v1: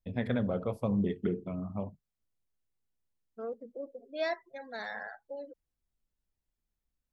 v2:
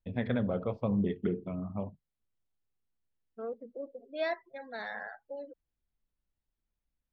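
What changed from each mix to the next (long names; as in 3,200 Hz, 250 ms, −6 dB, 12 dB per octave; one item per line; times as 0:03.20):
master: add low-pass filter 4,200 Hz 24 dB per octave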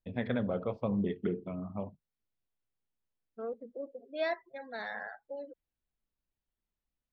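first voice: add low-shelf EQ 140 Hz −6.5 dB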